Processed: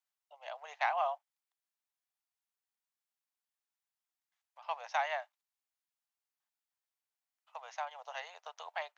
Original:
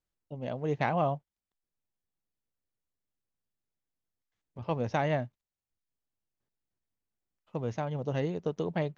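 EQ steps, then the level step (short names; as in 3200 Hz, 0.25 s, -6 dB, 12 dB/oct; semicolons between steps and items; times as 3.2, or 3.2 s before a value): steep high-pass 700 Hz 48 dB/oct; 0.0 dB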